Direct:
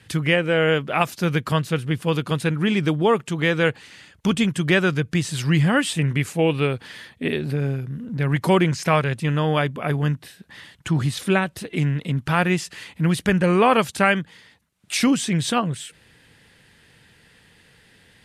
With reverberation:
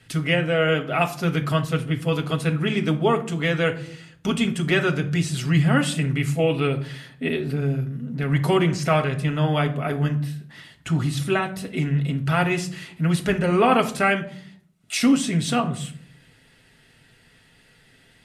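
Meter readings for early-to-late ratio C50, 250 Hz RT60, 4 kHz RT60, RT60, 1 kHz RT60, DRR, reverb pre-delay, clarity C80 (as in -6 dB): 13.5 dB, 0.85 s, 0.35 s, 0.60 s, 0.55 s, 3.0 dB, 4 ms, 17.5 dB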